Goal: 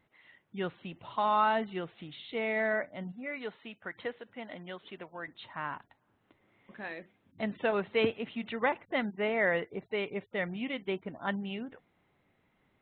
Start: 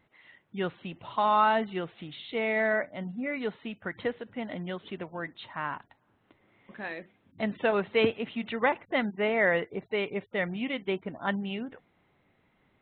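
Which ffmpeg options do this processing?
-filter_complex "[0:a]asettb=1/sr,asplit=3[s0][s1][s2];[s0]atrim=end=3.124[s3];[s1]atrim=start=3.12:end=5.28,asetpts=PTS-STARTPTS,afade=t=in:d=0.004:c=qsin,afade=t=out:st=2.156:d=0.004:c=qsin,lowshelf=f=300:g=-10.5[s4];[s2]atrim=start=5.276[s5];[s3][s4]acrossfade=d=0.004:c1=hsin:c2=qsin[s6];[s6][s5]acrossfade=d=0.004:c1=qsin:c2=hsin,volume=0.668"

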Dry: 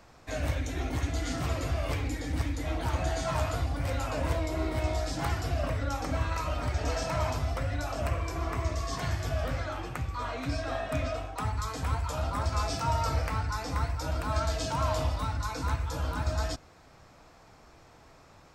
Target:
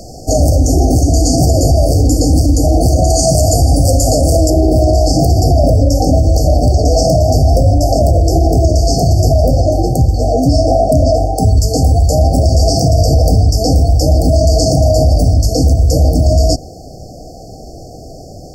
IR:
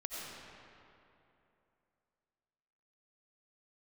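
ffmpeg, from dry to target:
-af "asetnsamples=n=441:p=0,asendcmd='3.1 equalizer g 9.5;4.5 equalizer g -3',equalizer=f=8700:t=o:w=1.5:g=3.5,afftfilt=real='re*(1-between(b*sr/4096,790,4400))':imag='im*(1-between(b*sr/4096,790,4400))':win_size=4096:overlap=0.75,alimiter=level_in=21.1:limit=0.891:release=50:level=0:latency=1,volume=0.891"

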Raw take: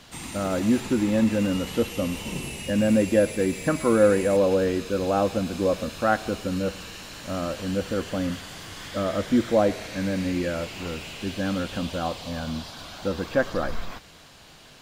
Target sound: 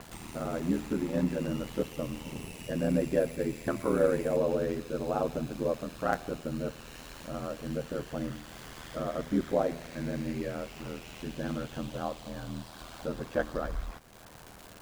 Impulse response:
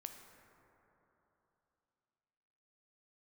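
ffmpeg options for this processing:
-filter_complex "[0:a]acrossover=split=1800[s0][s1];[s1]acrusher=bits=5:dc=4:mix=0:aa=0.000001[s2];[s0][s2]amix=inputs=2:normalize=0,bandreject=f=51.61:t=h:w=4,bandreject=f=103.22:t=h:w=4,bandreject=f=154.83:t=h:w=4,bandreject=f=206.44:t=h:w=4,bandreject=f=258.05:t=h:w=4,aeval=exprs='val(0)*sin(2*PI*40*n/s)':c=same,acompressor=mode=upward:threshold=0.02:ratio=2.5,volume=0.596"

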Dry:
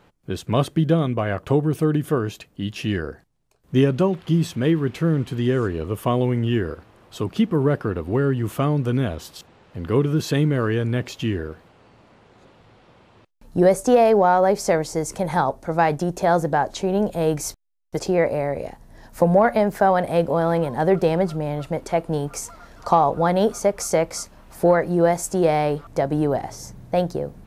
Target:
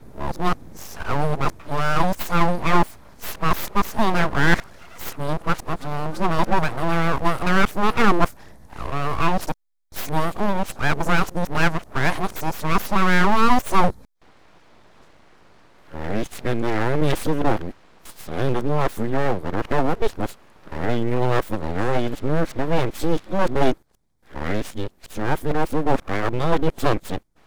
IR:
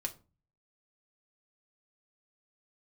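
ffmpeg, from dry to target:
-af "areverse,asuperstop=centerf=2800:order=4:qfactor=4.7,aeval=exprs='abs(val(0))':c=same,volume=1.33"

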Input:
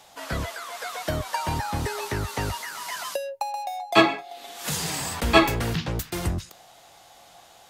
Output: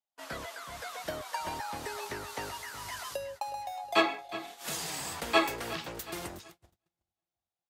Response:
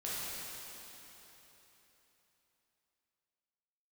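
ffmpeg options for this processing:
-filter_complex "[0:a]aecho=1:1:365|730|1095|1460|1825:0.178|0.0925|0.0481|0.025|0.013,acrossover=split=290|4100[s0][s1][s2];[s0]acompressor=threshold=0.01:ratio=16[s3];[s3][s1][s2]amix=inputs=3:normalize=0,agate=range=0.0112:threshold=0.0126:ratio=16:detection=peak,volume=0.422"

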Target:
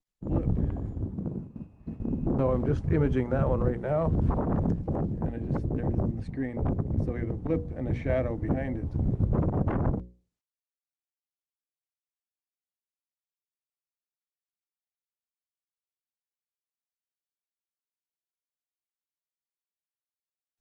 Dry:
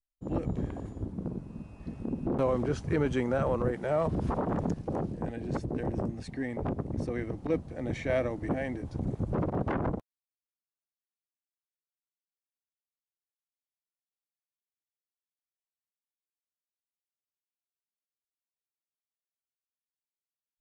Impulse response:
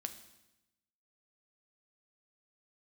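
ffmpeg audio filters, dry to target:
-filter_complex "[0:a]asettb=1/sr,asplit=3[s0][s1][s2];[s0]atrim=end=1.014[s3];[s1]atrim=start=1.01:end=1.99,asetpts=PTS-STARTPTS,afade=t=in:d=0.004:c=qsin,afade=t=out:st=0.976:d=0.004:c=qsin,highpass=f=110:p=1[s4];[s2]atrim=start=1.986[s5];[s3][s4]acrossfade=d=0.004:c1=hsin:c2=qsin[s6];[s6][s5]acrossfade=d=0.004:c1=qsin:c2=hsin,lowshelf=f=170:g=11,agate=range=0.355:threshold=0.0141:ratio=16:detection=peak,lowpass=f=3700:p=1,highshelf=f=2200:g=-4,bandreject=f=60:t=h:w=6,bandreject=f=120:t=h:w=6,bandreject=f=180:t=h:w=6,bandreject=f=240:t=h:w=6,bandreject=f=300:t=h:w=6,bandreject=f=360:t=h:w=6,bandreject=f=420:t=h:w=6,bandreject=f=480:t=h:w=6,bandreject=f=540:t=h:w=6" -ar 48000 -c:a libopus -b:a 32k

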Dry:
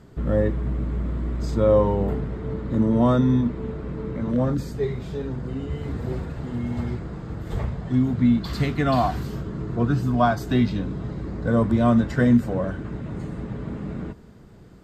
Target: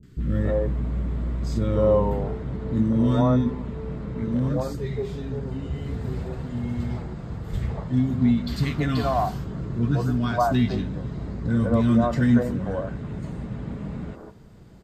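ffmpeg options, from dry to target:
-filter_complex "[0:a]acrossover=split=360|1400[s0][s1][s2];[s2]adelay=30[s3];[s1]adelay=180[s4];[s0][s4][s3]amix=inputs=3:normalize=0"

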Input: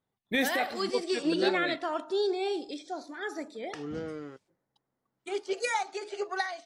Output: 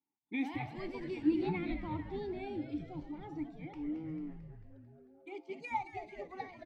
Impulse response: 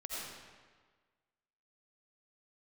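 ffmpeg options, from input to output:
-filter_complex "[0:a]asplit=3[s0][s1][s2];[s0]bandpass=f=300:t=q:w=8,volume=1[s3];[s1]bandpass=f=870:t=q:w=8,volume=0.501[s4];[s2]bandpass=f=2240:t=q:w=8,volume=0.355[s5];[s3][s4][s5]amix=inputs=3:normalize=0,asplit=9[s6][s7][s8][s9][s10][s11][s12][s13][s14];[s7]adelay=222,afreqshift=-140,volume=0.335[s15];[s8]adelay=444,afreqshift=-280,volume=0.214[s16];[s9]adelay=666,afreqshift=-420,volume=0.136[s17];[s10]adelay=888,afreqshift=-560,volume=0.0881[s18];[s11]adelay=1110,afreqshift=-700,volume=0.0562[s19];[s12]adelay=1332,afreqshift=-840,volume=0.0359[s20];[s13]adelay=1554,afreqshift=-980,volume=0.0229[s21];[s14]adelay=1776,afreqshift=-1120,volume=0.0148[s22];[s6][s15][s16][s17][s18][s19][s20][s21][s22]amix=inputs=9:normalize=0,volume=1.33"

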